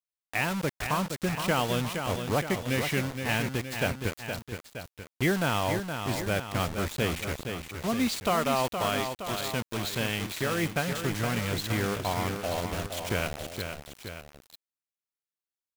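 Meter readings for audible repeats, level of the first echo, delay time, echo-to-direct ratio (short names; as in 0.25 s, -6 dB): 2, -7.0 dB, 0.468 s, -5.5 dB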